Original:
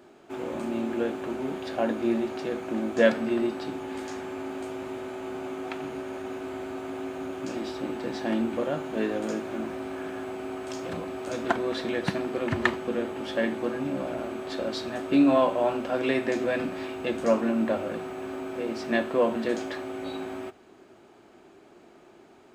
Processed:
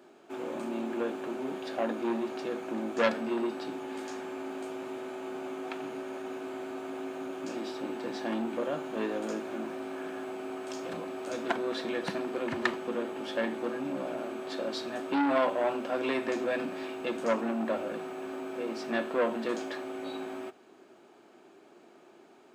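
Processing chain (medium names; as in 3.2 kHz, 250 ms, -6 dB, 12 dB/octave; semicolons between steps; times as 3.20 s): high-pass 200 Hz 12 dB/octave; band-stop 2 kHz, Q 22; transformer saturation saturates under 1.7 kHz; trim -2.5 dB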